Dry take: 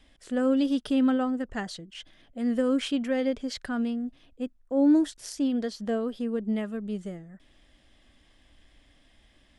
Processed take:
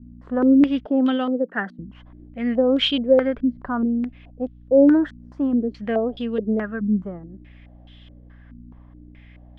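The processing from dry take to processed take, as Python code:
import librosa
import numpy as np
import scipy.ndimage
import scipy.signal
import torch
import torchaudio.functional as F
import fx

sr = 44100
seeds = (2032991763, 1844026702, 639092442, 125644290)

y = fx.add_hum(x, sr, base_hz=60, snr_db=21)
y = fx.ellip_highpass(y, sr, hz=180.0, order=4, stop_db=40, at=(0.86, 1.79))
y = fx.filter_held_lowpass(y, sr, hz=4.7, low_hz=240.0, high_hz=3300.0)
y = y * librosa.db_to_amplitude(3.5)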